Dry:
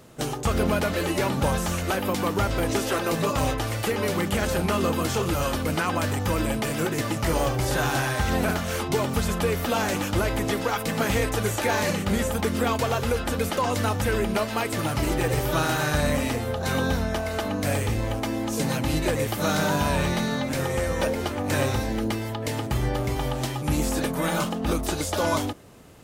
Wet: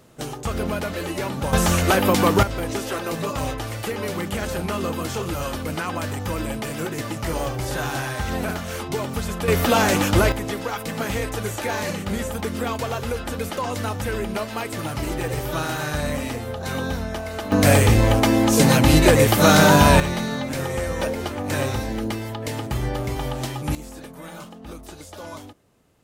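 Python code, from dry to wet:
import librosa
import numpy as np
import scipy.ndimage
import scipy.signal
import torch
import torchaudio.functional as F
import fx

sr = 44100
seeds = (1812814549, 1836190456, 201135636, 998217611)

y = fx.gain(x, sr, db=fx.steps((0.0, -2.5), (1.53, 8.0), (2.43, -2.0), (9.48, 7.0), (10.32, -2.0), (17.52, 10.5), (20.0, 0.0), (23.75, -13.0)))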